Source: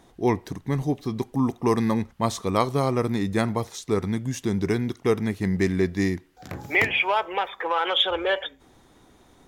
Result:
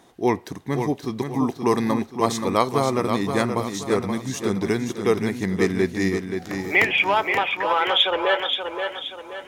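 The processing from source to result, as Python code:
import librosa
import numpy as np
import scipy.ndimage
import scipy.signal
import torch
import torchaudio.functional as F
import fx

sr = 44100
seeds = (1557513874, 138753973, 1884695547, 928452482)

p1 = fx.highpass(x, sr, hz=230.0, slope=6)
p2 = p1 + fx.echo_feedback(p1, sr, ms=527, feedback_pct=40, wet_db=-6.5, dry=0)
y = F.gain(torch.from_numpy(p2), 3.0).numpy()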